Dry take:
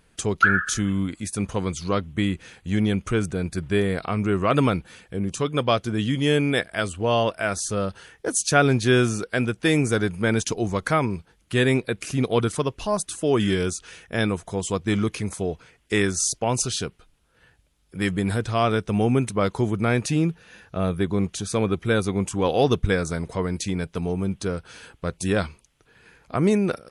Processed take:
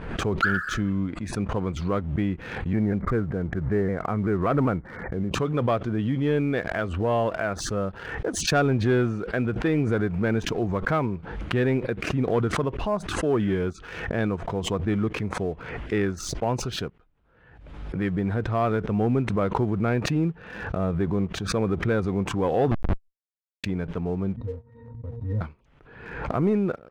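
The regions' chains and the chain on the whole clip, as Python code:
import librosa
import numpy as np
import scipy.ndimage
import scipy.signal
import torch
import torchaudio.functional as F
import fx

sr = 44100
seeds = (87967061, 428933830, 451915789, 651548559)

y = fx.chain(x, sr, fx.brickwall_lowpass(high_hz=2300.0),
    fx.vibrato_shape(shape='saw_down', rate_hz=5.2, depth_cents=100.0), at=(2.73, 5.31))
y = fx.chain(y, sr, fx.low_shelf_res(hz=310.0, db=8.0, q=1.5),
    fx.schmitt(flips_db=-10.5), at=(22.71, 23.64))
y = fx.chain(y, sr, fx.riaa(side='playback'),
    fx.octave_resonator(note='A#', decay_s=0.21), at=(24.36, 25.41))
y = scipy.signal.sosfilt(scipy.signal.butter(2, 1600.0, 'lowpass', fs=sr, output='sos'), y)
y = fx.leveller(y, sr, passes=1)
y = fx.pre_swell(y, sr, db_per_s=53.0)
y = y * 10.0 ** (-5.5 / 20.0)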